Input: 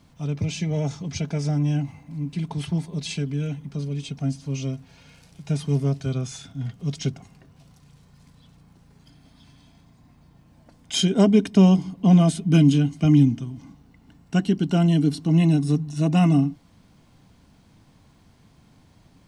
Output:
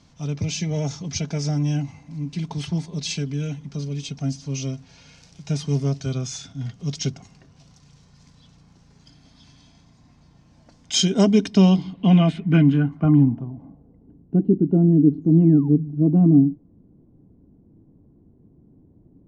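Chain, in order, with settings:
sound drawn into the spectrogram fall, 0:15.21–0:15.69, 770–7,400 Hz −34 dBFS
low-pass filter sweep 6,000 Hz → 360 Hz, 0:11.39–0:14.25

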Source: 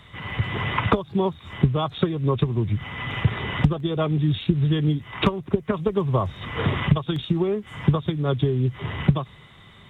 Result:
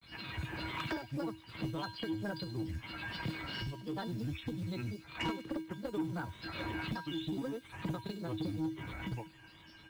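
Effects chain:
high-shelf EQ 2,700 Hz +4 dB
in parallel at +2 dB: downward compressor 16 to 1, threshold −31 dBFS, peak gain reduction 21 dB
on the sum: log-companded quantiser 6 bits
granular cloud, spray 36 ms, pitch spread up and down by 7 semitones
tuned comb filter 320 Hz, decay 0.34 s, harmonics odd, mix 90%
soft clipping −30.5 dBFS, distortion −13 dB
delay with a high-pass on its return 98 ms, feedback 56%, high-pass 2,900 Hz, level −12 dB
level +1 dB

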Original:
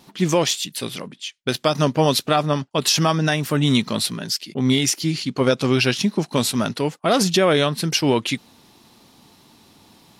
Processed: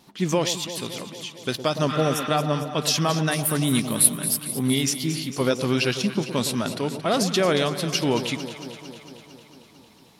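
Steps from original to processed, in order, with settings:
0:01.92–0:02.25: healed spectral selection 780–5,300 Hz after
0:03.31–0:04.74: high shelf with overshoot 7,800 Hz +11.5 dB, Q 3
on a send: delay that swaps between a low-pass and a high-pass 113 ms, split 930 Hz, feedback 82%, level −10 dB
on the sum: level −4.5 dB

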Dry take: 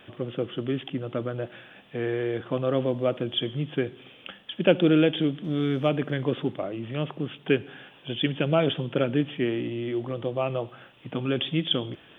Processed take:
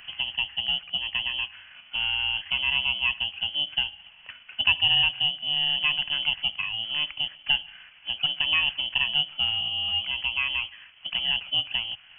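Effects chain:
samples in bit-reversed order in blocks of 16 samples
voice inversion scrambler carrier 3,200 Hz
multiband upward and downward compressor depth 40%

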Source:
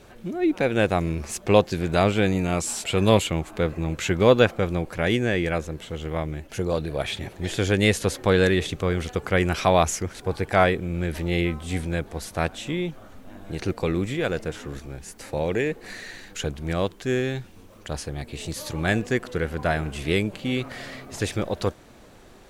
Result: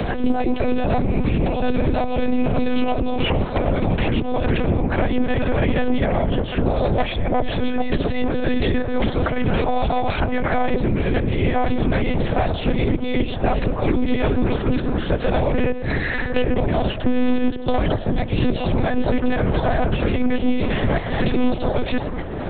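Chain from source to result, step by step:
delay that plays each chunk backwards 617 ms, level −2 dB
noise reduction from a noise print of the clip's start 7 dB
parametric band 90 Hz +6 dB 2.1 octaves
compressor whose output falls as the input rises −24 dBFS, ratio −1
hollow resonant body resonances 260/640 Hz, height 14 dB, ringing for 50 ms
soft clipping −12 dBFS, distortion −16 dB
amplitude modulation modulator 210 Hz, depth 70%
mains-hum notches 60/120/180/240/300/360/420/480/540 Hz
on a send at −16 dB: convolution reverb RT60 1.1 s, pre-delay 92 ms
on the sum: one-pitch LPC vocoder at 8 kHz 250 Hz
multiband upward and downward compressor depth 100%
level +6 dB

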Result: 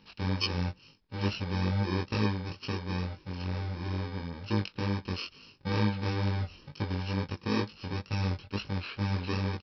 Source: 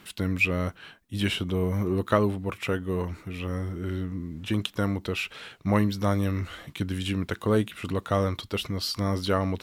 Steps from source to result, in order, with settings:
samples in bit-reversed order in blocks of 64 samples
chorus effect 2.2 Hz, delay 19 ms, depth 4.1 ms
downsampling to 11,025 Hz

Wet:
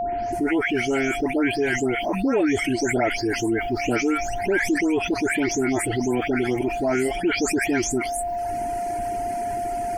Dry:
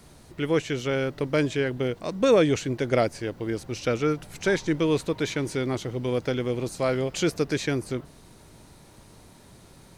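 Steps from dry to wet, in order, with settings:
every frequency bin delayed by itself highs late, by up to 324 ms
high-shelf EQ 10,000 Hz −7.5 dB
phaser with its sweep stopped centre 770 Hz, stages 8
steady tone 700 Hz −42 dBFS
reverb reduction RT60 1 s
envelope flattener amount 70%
level +2.5 dB

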